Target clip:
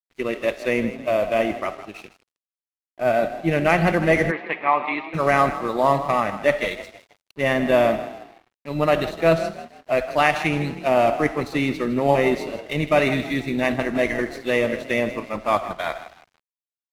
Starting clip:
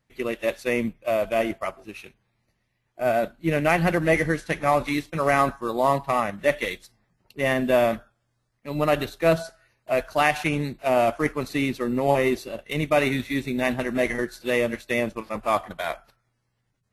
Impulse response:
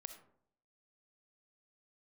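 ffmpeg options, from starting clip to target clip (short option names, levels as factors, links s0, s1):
-filter_complex "[0:a]asplit=5[s0][s1][s2][s3][s4];[s1]adelay=159,afreqshift=35,volume=0.224[s5];[s2]adelay=318,afreqshift=70,volume=0.0966[s6];[s3]adelay=477,afreqshift=105,volume=0.0412[s7];[s4]adelay=636,afreqshift=140,volume=0.0178[s8];[s0][s5][s6][s7][s8]amix=inputs=5:normalize=0,asplit=2[s9][s10];[1:a]atrim=start_sample=2205,lowpass=7600[s11];[s10][s11]afir=irnorm=-1:irlink=0,volume=1.88[s12];[s9][s12]amix=inputs=2:normalize=0,aeval=exprs='sgn(val(0))*max(abs(val(0))-0.00708,0)':c=same,asplit=3[s13][s14][s15];[s13]afade=t=out:st=4.3:d=0.02[s16];[s14]highpass=400,equalizer=f=580:t=q:w=4:g=-8,equalizer=f=990:t=q:w=4:g=7,equalizer=f=1500:t=q:w=4:g=-6,equalizer=f=2400:t=q:w=4:g=4,lowpass=f=3000:w=0.5412,lowpass=f=3000:w=1.3066,afade=t=in:st=4.3:d=0.02,afade=t=out:st=5.13:d=0.02[s17];[s15]afade=t=in:st=5.13:d=0.02[s18];[s16][s17][s18]amix=inputs=3:normalize=0,volume=0.668"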